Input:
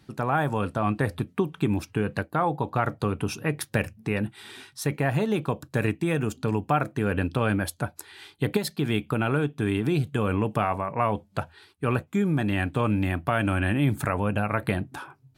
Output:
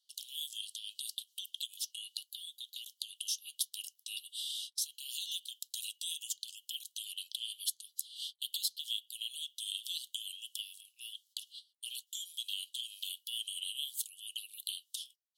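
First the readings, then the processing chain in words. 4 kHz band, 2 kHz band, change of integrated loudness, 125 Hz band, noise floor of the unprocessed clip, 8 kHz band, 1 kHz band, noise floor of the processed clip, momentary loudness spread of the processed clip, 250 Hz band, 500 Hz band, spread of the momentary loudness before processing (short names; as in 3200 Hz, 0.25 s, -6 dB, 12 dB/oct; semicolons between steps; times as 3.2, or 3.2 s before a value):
+5.5 dB, -24.0 dB, -12.5 dB, under -40 dB, -61 dBFS, +3.5 dB, under -40 dB, -79 dBFS, 7 LU, under -40 dB, under -40 dB, 7 LU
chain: gate -46 dBFS, range -23 dB; Chebyshev high-pass 2900 Hz, order 10; compressor 2.5:1, threshold -48 dBFS, peak gain reduction 13 dB; gain +11 dB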